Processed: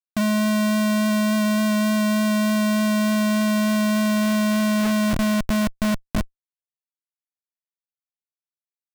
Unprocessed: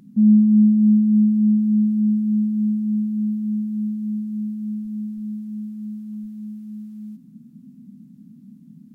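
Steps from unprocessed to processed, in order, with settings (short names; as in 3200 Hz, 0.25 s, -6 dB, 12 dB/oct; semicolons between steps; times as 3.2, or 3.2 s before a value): CVSD 32 kbps; treble ducked by the level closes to 300 Hz, closed at -14 dBFS; Schmitt trigger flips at -28 dBFS; gain +1.5 dB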